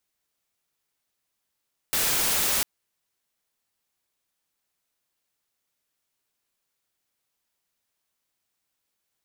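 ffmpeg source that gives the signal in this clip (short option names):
-f lavfi -i "anoisesrc=c=white:a=0.109:d=0.7:r=44100:seed=1"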